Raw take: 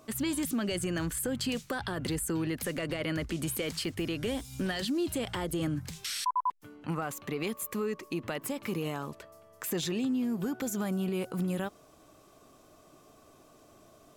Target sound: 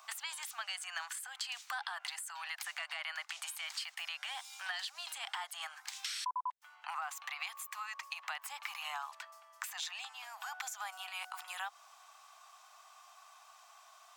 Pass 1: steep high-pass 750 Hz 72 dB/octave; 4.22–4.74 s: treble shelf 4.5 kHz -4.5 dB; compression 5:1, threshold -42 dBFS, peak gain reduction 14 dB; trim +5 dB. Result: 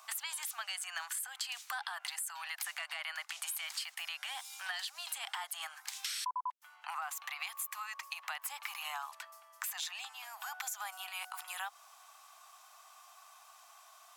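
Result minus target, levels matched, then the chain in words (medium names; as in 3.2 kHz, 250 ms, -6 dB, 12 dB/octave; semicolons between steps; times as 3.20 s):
8 kHz band +2.5 dB
steep high-pass 750 Hz 72 dB/octave; 4.22–4.74 s: treble shelf 4.5 kHz -4.5 dB; compression 5:1, threshold -42 dBFS, peak gain reduction 14 dB; peaking EQ 12 kHz -10.5 dB 0.66 oct; trim +5 dB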